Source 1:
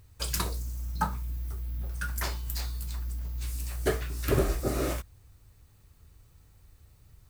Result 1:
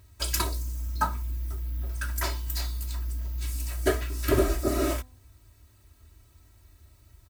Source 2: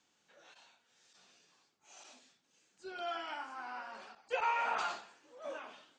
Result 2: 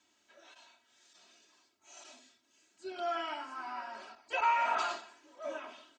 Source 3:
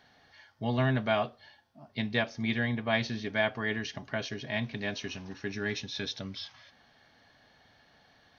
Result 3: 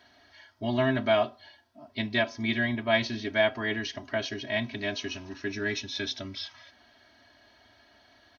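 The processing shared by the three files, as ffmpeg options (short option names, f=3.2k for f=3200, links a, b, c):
-af "highpass=51,aecho=1:1:3.1:1,bandreject=f=253.5:t=h:w=4,bandreject=f=507:t=h:w=4,bandreject=f=760.5:t=h:w=4,bandreject=f=1.014k:t=h:w=4"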